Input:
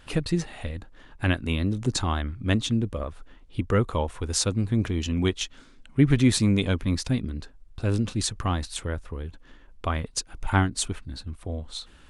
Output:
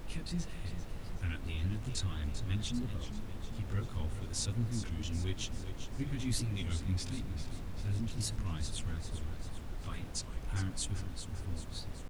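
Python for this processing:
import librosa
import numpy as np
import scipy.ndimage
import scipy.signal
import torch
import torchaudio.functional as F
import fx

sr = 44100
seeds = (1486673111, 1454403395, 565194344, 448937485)

p1 = fx.tone_stack(x, sr, knobs='6-0-2')
p2 = fx.over_compress(p1, sr, threshold_db=-42.0, ratio=-1.0)
p3 = p1 + F.gain(torch.from_numpy(p2), -2.0).numpy()
p4 = fx.chorus_voices(p3, sr, voices=2, hz=0.87, base_ms=20, depth_ms=2.3, mix_pct=55)
p5 = fx.dmg_noise_colour(p4, sr, seeds[0], colour='brown', level_db=-43.0)
p6 = p5 + fx.echo_feedback(p5, sr, ms=394, feedback_pct=57, wet_db=-10.5, dry=0)
p7 = fx.record_warp(p6, sr, rpm=33.33, depth_cents=160.0)
y = F.gain(torch.from_numpy(p7), 2.5).numpy()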